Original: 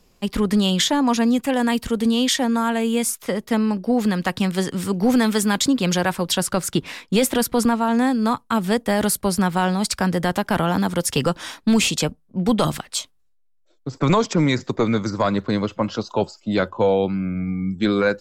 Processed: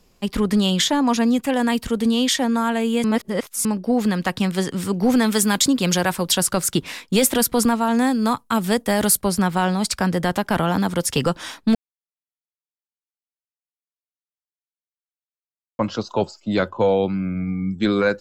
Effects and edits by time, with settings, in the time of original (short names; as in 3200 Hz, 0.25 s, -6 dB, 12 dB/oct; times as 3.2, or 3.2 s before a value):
3.04–3.65 reverse
5.32–9.23 high shelf 5700 Hz +7 dB
11.75–15.79 mute